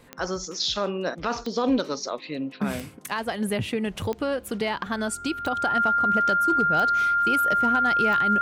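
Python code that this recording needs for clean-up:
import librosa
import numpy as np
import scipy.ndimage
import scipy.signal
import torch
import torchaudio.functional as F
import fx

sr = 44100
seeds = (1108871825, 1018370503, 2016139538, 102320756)

y = fx.fix_declip(x, sr, threshold_db=-14.0)
y = fx.fix_declick_ar(y, sr, threshold=10.0)
y = fx.notch(y, sr, hz=1400.0, q=30.0)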